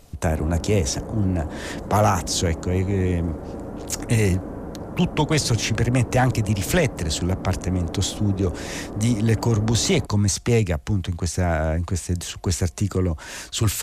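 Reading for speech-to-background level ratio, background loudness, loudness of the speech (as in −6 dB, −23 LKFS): 11.0 dB, −34.0 LKFS, −23.0 LKFS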